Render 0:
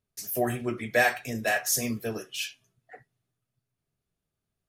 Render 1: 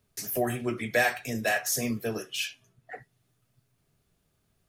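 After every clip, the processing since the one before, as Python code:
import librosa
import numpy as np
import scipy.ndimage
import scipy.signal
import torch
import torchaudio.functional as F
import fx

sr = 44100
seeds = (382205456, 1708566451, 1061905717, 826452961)

y = fx.band_squash(x, sr, depth_pct=40)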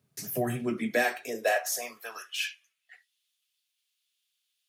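y = fx.filter_sweep_highpass(x, sr, from_hz=140.0, to_hz=3200.0, start_s=0.49, end_s=2.96, q=2.7)
y = y * librosa.db_to_amplitude(-3.0)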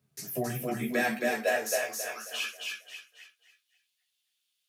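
y = fx.echo_feedback(x, sr, ms=270, feedback_pct=35, wet_db=-3.0)
y = fx.chorus_voices(y, sr, voices=2, hz=0.78, base_ms=14, depth_ms=1.5, mix_pct=40)
y = y * librosa.db_to_amplitude(1.0)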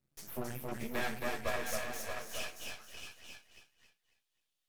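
y = np.maximum(x, 0.0)
y = y + 10.0 ** (-6.5 / 20.0) * np.pad(y, (int(629 * sr / 1000.0), 0))[:len(y)]
y = y * librosa.db_to_amplitude(-4.5)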